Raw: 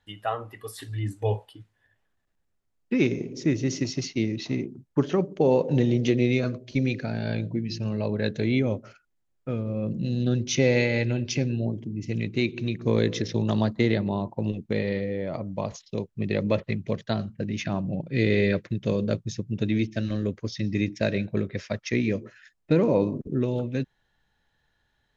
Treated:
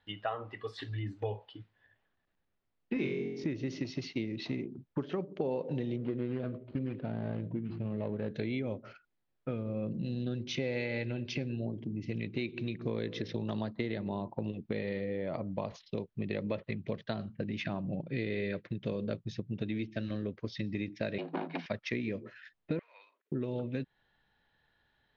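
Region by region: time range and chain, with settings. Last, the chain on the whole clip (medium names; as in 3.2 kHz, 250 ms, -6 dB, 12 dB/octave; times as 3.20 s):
2.94–3.44 s: gate -35 dBFS, range -16 dB + upward compressor, threshold -30 dBFS + flutter echo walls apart 3.8 m, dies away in 0.55 s
5.96–8.31 s: median filter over 25 samples + distance through air 290 m
21.18–21.66 s: comb filter that takes the minimum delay 1.4 ms + low-pass 4.9 kHz 24 dB/octave + frequency shift +160 Hz
22.79–23.32 s: ladder high-pass 1.5 kHz, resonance 45% + distance through air 100 m
whole clip: compression 5:1, threshold -31 dBFS; low-pass 4.3 kHz 24 dB/octave; bass shelf 99 Hz -7.5 dB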